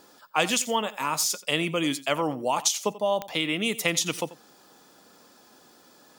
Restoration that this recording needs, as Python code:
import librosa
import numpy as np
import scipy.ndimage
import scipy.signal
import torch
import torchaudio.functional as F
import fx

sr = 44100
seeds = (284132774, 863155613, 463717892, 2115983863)

y = fx.fix_declick_ar(x, sr, threshold=10.0)
y = fx.fix_echo_inverse(y, sr, delay_ms=88, level_db=-17.5)